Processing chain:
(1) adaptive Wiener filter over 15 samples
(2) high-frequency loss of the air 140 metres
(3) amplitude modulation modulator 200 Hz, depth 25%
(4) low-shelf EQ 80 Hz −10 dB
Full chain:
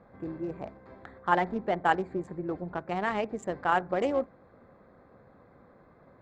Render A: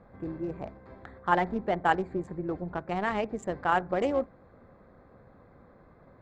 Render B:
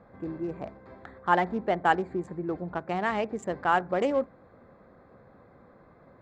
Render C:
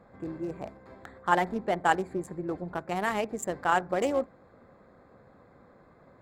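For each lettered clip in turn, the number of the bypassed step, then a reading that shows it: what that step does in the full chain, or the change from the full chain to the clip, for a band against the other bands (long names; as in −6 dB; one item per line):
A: 4, 125 Hz band +2.0 dB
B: 3, change in integrated loudness +1.5 LU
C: 2, 4 kHz band +2.5 dB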